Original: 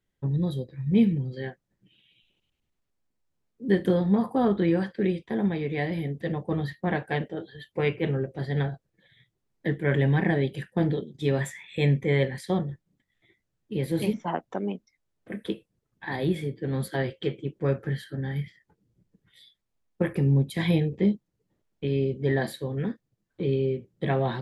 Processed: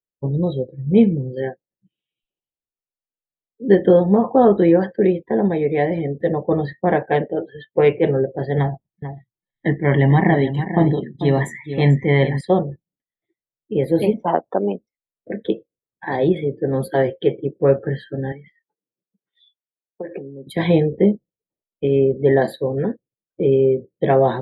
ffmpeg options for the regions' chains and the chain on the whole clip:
-filter_complex "[0:a]asettb=1/sr,asplit=3[a][b][c];[a]atrim=end=8.584[d];[b]atrim=start=8.58:end=12.41,asetpts=PTS-STARTPTS,afade=t=in:d=0.004:c=qsin,afade=t=out:st=3.826:d=0.004:c=qsin,aecho=1:1:1:0.64,atrim=end_sample=168903,aecho=1:1:443:0.299,atrim=end_sample=168903[e];[c]atrim=start=12.406[f];[d][e]acrossfade=d=0.004:c1=hsin:c2=qsin[g];[g][f]acrossfade=d=0.004:c1=qsin:c2=hsin,asettb=1/sr,asplit=3[h][i][j];[h]atrim=end=18.324[k];[i]atrim=start=18.32:end=20.47,asetpts=PTS-STARTPTS,afade=t=in:d=0.004:c=qsin,afade=t=out:st=2.146:d=0.004:c=qsin,acompressor=threshold=-34dB:ratio=8:attack=3.2:release=140:knee=1:detection=peak,highpass=240,lowpass=6.3k[l];[j]atrim=start=20.466[m];[k][l]acrossfade=d=0.004:c1=hsin:c2=qsin[n];[n][m]acrossfade=d=0.004:c1=qsin:c2=hsin,afftdn=nr=28:nf=-45,equalizer=f=550:t=o:w=1.9:g=11.5,volume=2.5dB"

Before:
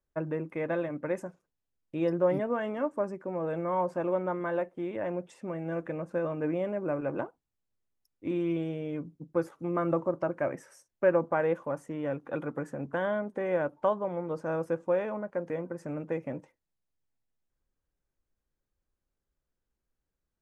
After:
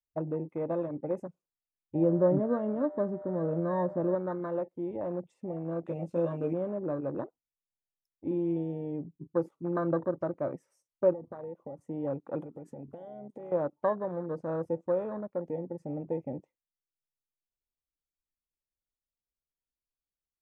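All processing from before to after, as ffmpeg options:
-filter_complex "[0:a]asettb=1/sr,asplit=3[a][b][c];[a]atrim=end=1.954[d];[b]atrim=start=1.95:end=4.15,asetpts=PTS-STARTPTS,afade=t=in:d=0.004:c=qsin,afade=t=out:st=2.196:d=0.004:c=qsin,lowpass=f=1.9k:p=1,aeval=exprs='val(0)+0.0112*sin(2*PI*600*n/s)':c=same,lowshelf=f=310:g=7.5[e];[c]atrim=start=4.146[f];[d][e]acrossfade=d=0.004:c1=hsin:c2=qsin[g];[g][f]acrossfade=d=0.004:c1=qsin:c2=hsin,asettb=1/sr,asplit=3[h][i][j];[h]atrim=end=5.864[k];[i]atrim=start=5.86:end=6.53,asetpts=PTS-STARTPTS,afade=t=in:d=0.004:c=qsin,afade=t=out:st=0.666:d=0.004:c=qsin,highshelf=f=2.1k:t=q:w=1.5:g=11,bandreject=f=1.2k:w=15,asplit=2[l][m];[m]adelay=18,volume=-3dB[n];[l][n]amix=inputs=2:normalize=0,atrim=end_sample=29547[o];[j]atrim=start=6.526[p];[k][o]acrossfade=d=0.004:c1=hsin:c2=qsin[q];[q][p]acrossfade=d=0.004:c1=qsin:c2=hsin,asettb=1/sr,asplit=3[r][s][t];[r]atrim=end=11.134[u];[s]atrim=start=11.13:end=11.81,asetpts=PTS-STARTPTS,afade=t=in:d=0.004:c=qsin,afade=t=out:st=0.676:d=0.004:c=qsin,highshelf=f=2.3k:g=-11.5,acompressor=threshold=-36dB:ratio=8:attack=3.2:release=140:knee=1:detection=peak[v];[t]atrim=start=11.806[w];[u][v]acrossfade=d=0.004:c1=hsin:c2=qsin[x];[x][w]acrossfade=d=0.004:c1=qsin:c2=hsin,asettb=1/sr,asplit=3[y][z][aa];[y]atrim=end=12.404[ab];[z]atrim=start=12.4:end=13.52,asetpts=PTS-STARTPTS,afade=t=in:d=0.004:c=qsin,afade=t=out:st=1.116:d=0.004:c=qsin,highshelf=f=2.6k:g=9,acompressor=threshold=-38dB:ratio=16:attack=3.2:release=140:knee=1:detection=peak[ac];[aa]atrim=start=13.516[ad];[ab][ac]acrossfade=d=0.004:c1=hsin:c2=qsin[ae];[ae][ad]acrossfade=d=0.004:c1=qsin:c2=hsin,equalizer=f=1.6k:w=5:g=-13,afwtdn=0.0141,adynamicequalizer=threshold=0.00631:dfrequency=790:dqfactor=1.5:tfrequency=790:tqfactor=1.5:attack=5:release=100:ratio=0.375:range=2.5:mode=cutabove:tftype=bell"

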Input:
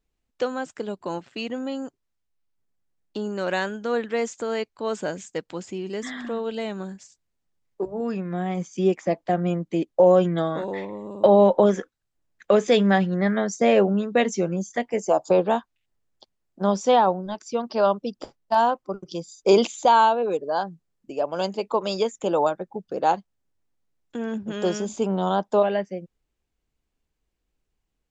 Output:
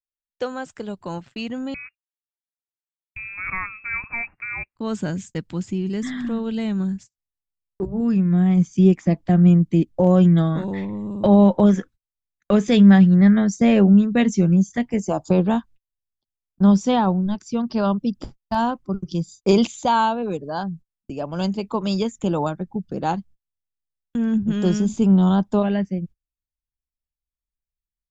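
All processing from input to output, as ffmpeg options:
-filter_complex "[0:a]asettb=1/sr,asplit=3[a][b][c];[a]atrim=end=1.744[d];[b]atrim=start=1.74:end=4.76,asetpts=PTS-STARTPTS,afade=t=in:d=0.004:c=qsin,afade=t=out:st=3.016:d=0.004:c=qsin,highpass=f=510:p=1,acrusher=bits=4:mode=log:mix=0:aa=0.000001,lowpass=f=2.4k:t=q:w=0.5098,lowpass=f=2.4k:t=q:w=0.6013,lowpass=f=2.4k:t=q:w=0.9,lowpass=f=2.4k:t=q:w=2.563,afreqshift=-2800[e];[c]atrim=start=4.756[f];[d][e]acrossfade=d=0.004:c1=hsin:c2=qsin[g];[g][f]acrossfade=d=0.004:c1=qsin:c2=hsin,agate=range=-33dB:threshold=-45dB:ratio=16:detection=peak,asubboost=boost=11.5:cutoff=160"

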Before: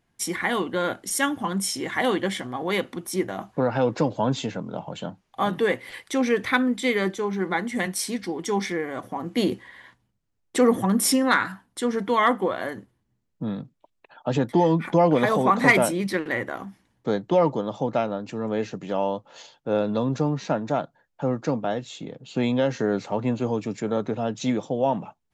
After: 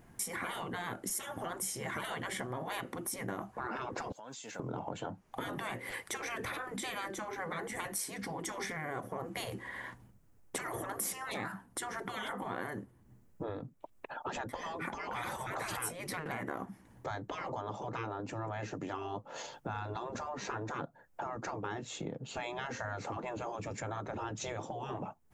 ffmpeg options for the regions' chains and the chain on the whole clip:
-filter_complex "[0:a]asettb=1/sr,asplit=3[a][b][c];[a]atrim=end=4.124[d];[b]atrim=start=4.12:end=4.6,asetpts=PTS-STARTPTS,afade=t=in:d=0.004:c=qsin,afade=t=out:st=0.476:d=0.004:c=qsin,aderivative,acompressor=threshold=-48dB:ratio=10:attack=3.2:release=140:knee=1:detection=peak[e];[c]atrim=start=4.596[f];[d][e]acrossfade=d=0.004:c1=hsin:c2=qsin[g];[g][f]acrossfade=d=0.004:c1=qsin:c2=hsin,afftfilt=real='re*lt(hypot(re,im),0.126)':imag='im*lt(hypot(re,im),0.126)':win_size=1024:overlap=0.75,equalizer=f=3.8k:t=o:w=1.6:g=-11,acompressor=threshold=-55dB:ratio=3,volume=13.5dB"

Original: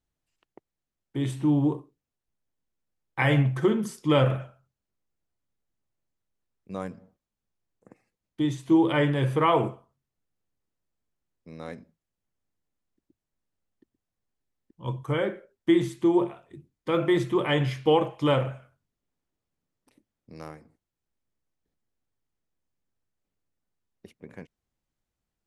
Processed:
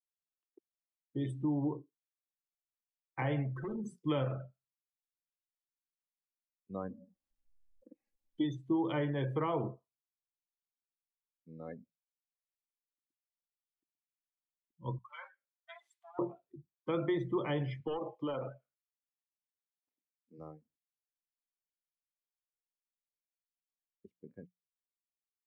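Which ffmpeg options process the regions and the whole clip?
-filter_complex "[0:a]asettb=1/sr,asplit=3[a][b][c];[a]atrim=end=3.534[d];[b]atrim=start=3.53:end=3.95,asetpts=PTS-STARTPTS,afade=t=in:d=0.004:c=qsin,afade=t=out:st=0.416:d=0.004:c=qsin,bandreject=f=50:t=h:w=6,bandreject=f=100:t=h:w=6,bandreject=f=150:t=h:w=6,acompressor=threshold=-30dB:ratio=3:attack=3.2:release=140:knee=1:detection=peak,aeval=exprs='0.0422*(abs(mod(val(0)/0.0422+3,4)-2)-1)':c=same[e];[c]atrim=start=3.946[f];[d][e]acrossfade=d=0.004:c1=hsin:c2=qsin[g];[g][f]acrossfade=d=0.004:c1=qsin:c2=hsin,asettb=1/sr,asplit=3[h][i][j];[h]atrim=end=6.894[k];[i]atrim=start=6.89:end=8.44,asetpts=PTS-STARTPTS,afade=t=in:d=0.004:c=qsin,afade=t=out:st=1.546:d=0.004:c=qsin,bandreject=f=1.3k:w=7.3,aecho=1:1:3.6:0.62,atrim=end_sample=68355,acompressor=mode=upward:threshold=-39dB:ratio=2.5:attack=3.2:release=140:knee=2.83:detection=peak[l];[j]atrim=start=8.436[m];[k][l]acrossfade=d=0.004:c1=hsin:c2=qsin[n];[n][m]acrossfade=d=0.004:c1=qsin:c2=hsin,asettb=1/sr,asplit=3[o][p][q];[o]atrim=end=14.984[r];[p]atrim=start=14.98:end=16.19,asetpts=PTS-STARTPTS,afade=t=in:d=0.004:c=qsin,afade=t=out:st=1.206:d=0.004:c=qsin,acompressor=threshold=-31dB:ratio=1.5:attack=3.2:release=140:knee=1:detection=peak,aeval=exprs='clip(val(0),-1,0.0224)':c=same,highpass=f=910:w=0.5412,highpass=f=910:w=1.3066[s];[q]atrim=start=16.186[t];[r][s]acrossfade=d=0.004:c1=hsin:c2=qsin[u];[u][t]acrossfade=d=0.004:c1=qsin:c2=hsin,asettb=1/sr,asplit=3[v][w][x];[v]atrim=end=17.804[y];[w]atrim=start=17.8:end=20.38,asetpts=PTS-STARTPTS,afade=t=in:d=0.004:c=qsin,afade=t=out:st=2.576:d=0.004:c=qsin,highpass=210,lowpass=4.6k,aeval=exprs='clip(val(0),-1,0.106)':c=same,acompressor=threshold=-26dB:ratio=10:attack=3.2:release=140:knee=1:detection=peak[z];[x]atrim=start=20.376[aa];[y][z]acrossfade=d=0.004:c1=hsin:c2=qsin[ab];[ab][aa]acrossfade=d=0.004:c1=qsin:c2=hsin,bandreject=f=60:t=h:w=6,bandreject=f=120:t=h:w=6,bandreject=f=180:t=h:w=6,afftdn=nr=29:nf=-37,acrossover=split=330|930[ac][ad][ae];[ac]acompressor=threshold=-29dB:ratio=4[af];[ad]acompressor=threshold=-30dB:ratio=4[ag];[ae]acompressor=threshold=-38dB:ratio=4[ah];[af][ag][ah]amix=inputs=3:normalize=0,volume=-5.5dB"

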